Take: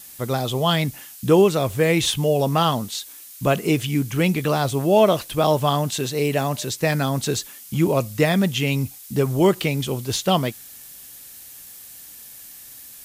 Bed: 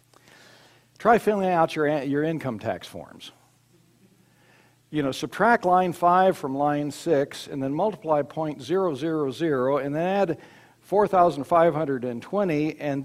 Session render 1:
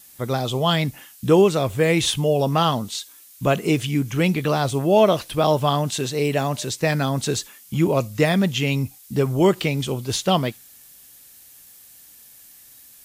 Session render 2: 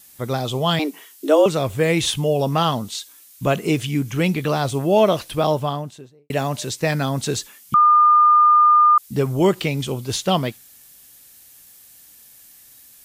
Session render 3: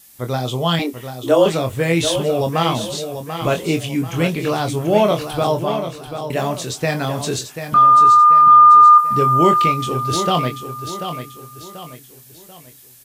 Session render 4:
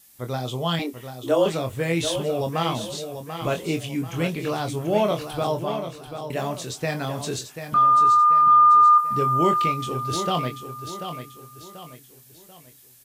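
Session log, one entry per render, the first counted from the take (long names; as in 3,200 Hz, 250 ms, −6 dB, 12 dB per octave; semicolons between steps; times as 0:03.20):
noise reduction from a noise print 6 dB
0:00.79–0:01.46: frequency shifter +150 Hz; 0:05.32–0:06.30: fade out and dull; 0:07.74–0:08.98: beep over 1,210 Hz −9.5 dBFS
double-tracking delay 24 ms −6.5 dB; repeating echo 738 ms, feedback 40%, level −9 dB
level −6.5 dB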